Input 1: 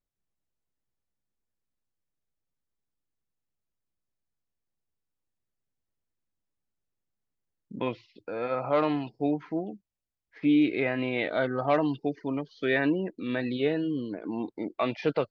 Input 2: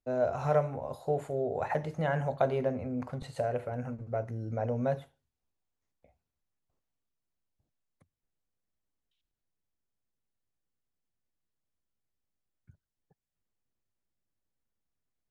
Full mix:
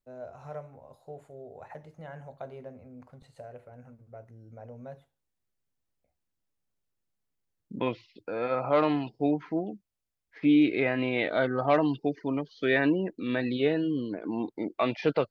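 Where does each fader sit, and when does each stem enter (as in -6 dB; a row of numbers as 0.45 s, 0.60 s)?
+1.0 dB, -13.5 dB; 0.00 s, 0.00 s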